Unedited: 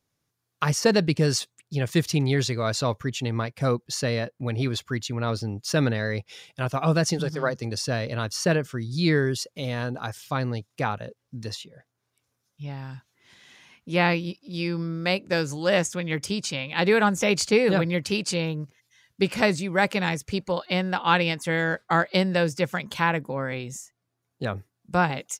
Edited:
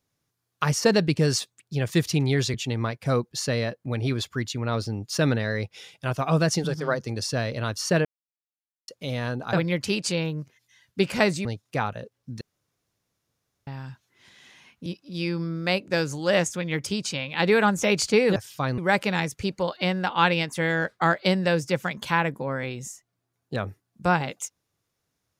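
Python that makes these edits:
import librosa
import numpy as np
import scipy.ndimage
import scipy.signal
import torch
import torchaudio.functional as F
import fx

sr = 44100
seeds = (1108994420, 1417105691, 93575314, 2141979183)

y = fx.edit(x, sr, fx.cut(start_s=2.54, length_s=0.55),
    fx.silence(start_s=8.6, length_s=0.83),
    fx.swap(start_s=10.08, length_s=0.42, other_s=17.75, other_length_s=1.92),
    fx.room_tone_fill(start_s=11.46, length_s=1.26),
    fx.cut(start_s=13.91, length_s=0.34), tone=tone)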